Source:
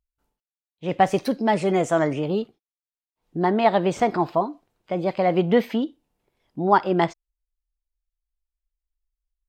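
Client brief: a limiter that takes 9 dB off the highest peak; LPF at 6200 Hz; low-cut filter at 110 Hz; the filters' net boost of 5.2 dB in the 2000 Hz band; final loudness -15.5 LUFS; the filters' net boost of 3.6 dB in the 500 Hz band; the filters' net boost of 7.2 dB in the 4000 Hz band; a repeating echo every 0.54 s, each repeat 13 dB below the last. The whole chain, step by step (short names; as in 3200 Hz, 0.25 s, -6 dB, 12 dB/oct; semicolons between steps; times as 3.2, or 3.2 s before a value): HPF 110 Hz; LPF 6200 Hz; bell 500 Hz +4.5 dB; bell 2000 Hz +4 dB; bell 4000 Hz +8.5 dB; limiter -10 dBFS; feedback echo 0.54 s, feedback 22%, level -13 dB; gain +7 dB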